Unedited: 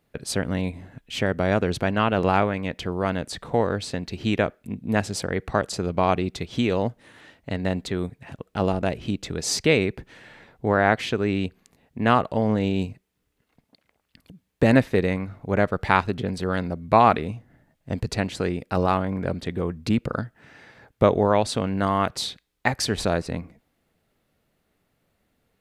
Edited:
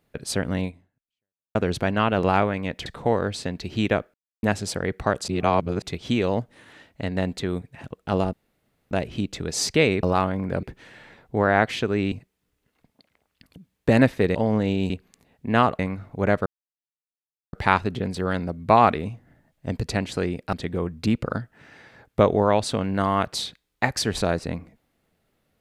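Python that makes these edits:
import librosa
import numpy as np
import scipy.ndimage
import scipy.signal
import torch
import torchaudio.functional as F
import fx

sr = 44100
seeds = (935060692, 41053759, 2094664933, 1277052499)

y = fx.edit(x, sr, fx.fade_out_span(start_s=0.64, length_s=0.91, curve='exp'),
    fx.cut(start_s=2.86, length_s=0.48),
    fx.silence(start_s=4.62, length_s=0.29),
    fx.reverse_span(start_s=5.76, length_s=0.54),
    fx.insert_room_tone(at_s=8.81, length_s=0.58),
    fx.swap(start_s=11.42, length_s=0.89, other_s=12.86, other_length_s=2.23),
    fx.insert_silence(at_s=15.76, length_s=1.07),
    fx.move(start_s=18.76, length_s=0.6, to_s=9.93), tone=tone)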